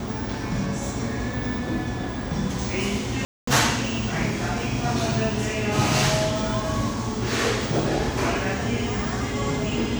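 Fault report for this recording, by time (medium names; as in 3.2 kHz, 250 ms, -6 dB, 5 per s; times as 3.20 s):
3.25–3.47 s: dropout 224 ms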